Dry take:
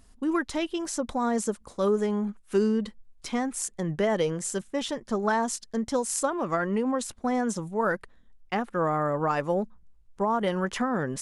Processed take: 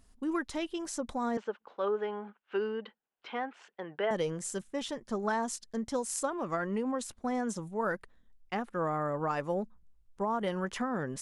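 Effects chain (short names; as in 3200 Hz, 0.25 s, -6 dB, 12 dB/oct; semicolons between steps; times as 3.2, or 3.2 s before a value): 1.37–4.11 speaker cabinet 410–3300 Hz, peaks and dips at 450 Hz +3 dB, 840 Hz +6 dB, 1500 Hz +7 dB, 2900 Hz +6 dB; gain -6 dB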